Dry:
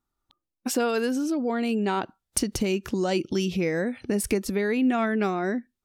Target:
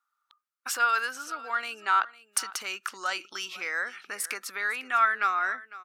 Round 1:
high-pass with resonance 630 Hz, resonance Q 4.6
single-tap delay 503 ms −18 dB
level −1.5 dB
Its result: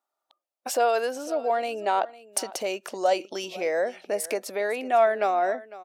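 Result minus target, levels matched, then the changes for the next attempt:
500 Hz band +17.5 dB
change: high-pass with resonance 1,300 Hz, resonance Q 4.6

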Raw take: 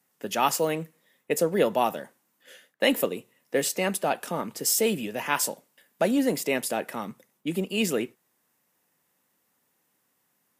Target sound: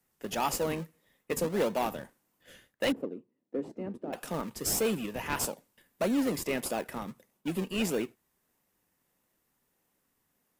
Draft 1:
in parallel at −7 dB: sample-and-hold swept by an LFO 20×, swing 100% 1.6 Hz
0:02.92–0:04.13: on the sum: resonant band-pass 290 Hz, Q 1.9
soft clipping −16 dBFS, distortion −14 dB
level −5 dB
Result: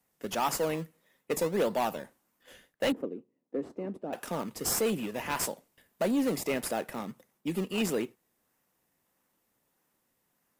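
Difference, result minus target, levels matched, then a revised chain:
sample-and-hold swept by an LFO: distortion −8 dB
in parallel at −7 dB: sample-and-hold swept by an LFO 43×, swing 100% 1.6 Hz
0:02.92–0:04.13: on the sum: resonant band-pass 290 Hz, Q 1.9
soft clipping −16 dBFS, distortion −14 dB
level −5 dB

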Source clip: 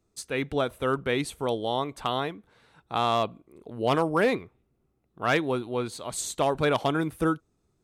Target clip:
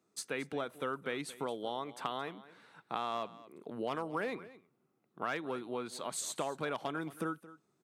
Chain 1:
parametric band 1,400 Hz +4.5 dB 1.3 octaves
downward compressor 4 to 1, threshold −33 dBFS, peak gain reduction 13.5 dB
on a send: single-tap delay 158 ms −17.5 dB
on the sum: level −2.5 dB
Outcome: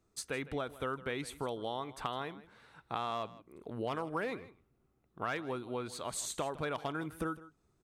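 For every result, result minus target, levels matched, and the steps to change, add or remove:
echo 65 ms early; 125 Hz band +4.0 dB
change: single-tap delay 223 ms −17.5 dB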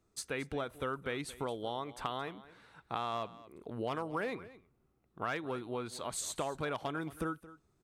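125 Hz band +4.0 dB
add after downward compressor: high-pass filter 150 Hz 24 dB per octave

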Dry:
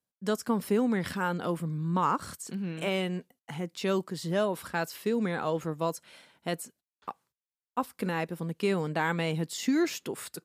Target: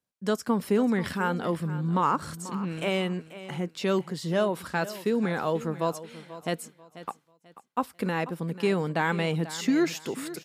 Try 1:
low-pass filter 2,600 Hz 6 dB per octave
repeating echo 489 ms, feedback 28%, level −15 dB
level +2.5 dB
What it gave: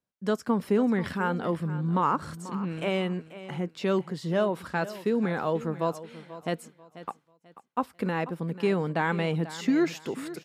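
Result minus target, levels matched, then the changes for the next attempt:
8,000 Hz band −6.5 dB
change: low-pass filter 8,100 Hz 6 dB per octave

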